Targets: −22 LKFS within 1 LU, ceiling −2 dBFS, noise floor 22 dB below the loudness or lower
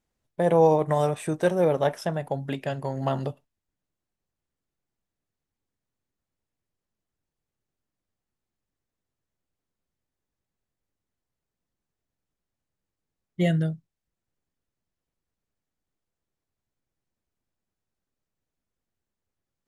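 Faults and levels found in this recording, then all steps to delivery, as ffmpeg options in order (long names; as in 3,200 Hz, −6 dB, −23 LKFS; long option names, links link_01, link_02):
integrated loudness −25.0 LKFS; sample peak −8.5 dBFS; target loudness −22.0 LKFS
→ -af "volume=3dB"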